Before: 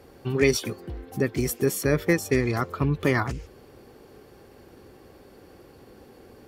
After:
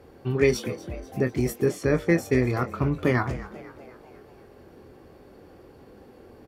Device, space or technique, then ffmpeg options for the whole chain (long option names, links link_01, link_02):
behind a face mask: -filter_complex "[0:a]highshelf=frequency=2900:gain=-8,asettb=1/sr,asplit=3[link_01][link_02][link_03];[link_01]atrim=end=1.684[link_04];[link_02]atrim=start=1.68:end=2.15,asetpts=PTS-STARTPTS,afade=type=in:duration=0.004:curve=qsin,afade=type=out:start_time=0.466:duration=0.004:curve=qsin,lowpass=7600[link_05];[link_03]atrim=start=2.146[link_06];[link_04][link_05]acrossfade=duration=0.004:curve1=hsin:curve2=qsin[link_07];[link_07][link_06]acrossfade=duration=0.004:curve1=qsin:curve2=hsin,asplit=2[link_08][link_09];[link_09]adelay=24,volume=-9dB[link_10];[link_08][link_10]amix=inputs=2:normalize=0,asplit=6[link_11][link_12][link_13][link_14][link_15][link_16];[link_12]adelay=246,afreqshift=88,volume=-16.5dB[link_17];[link_13]adelay=492,afreqshift=176,volume=-22.3dB[link_18];[link_14]adelay=738,afreqshift=264,volume=-28.2dB[link_19];[link_15]adelay=984,afreqshift=352,volume=-34dB[link_20];[link_16]adelay=1230,afreqshift=440,volume=-39.9dB[link_21];[link_11][link_17][link_18][link_19][link_20][link_21]amix=inputs=6:normalize=0"